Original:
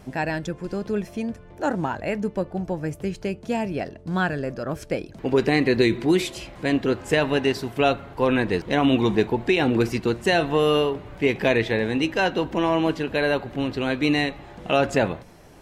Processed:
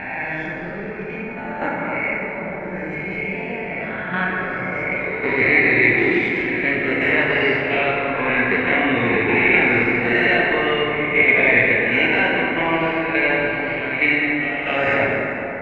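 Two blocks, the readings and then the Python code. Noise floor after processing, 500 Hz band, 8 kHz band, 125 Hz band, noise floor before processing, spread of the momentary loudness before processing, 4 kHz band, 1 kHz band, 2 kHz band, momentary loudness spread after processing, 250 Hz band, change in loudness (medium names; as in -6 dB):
-29 dBFS, +1.0 dB, under -15 dB, -1.5 dB, -45 dBFS, 9 LU, +0.5 dB, +3.5 dB, +12.5 dB, 13 LU, -0.5 dB, +5.5 dB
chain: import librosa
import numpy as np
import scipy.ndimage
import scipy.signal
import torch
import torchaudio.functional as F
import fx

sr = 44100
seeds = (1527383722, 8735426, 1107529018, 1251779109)

y = fx.spec_swells(x, sr, rise_s=1.4)
y = fx.level_steps(y, sr, step_db=10)
y = fx.lowpass_res(y, sr, hz=2200.0, q=11.0)
y = fx.rev_plate(y, sr, seeds[0], rt60_s=4.0, hf_ratio=0.4, predelay_ms=0, drr_db=-4.0)
y = y * 10.0 ** (-5.5 / 20.0)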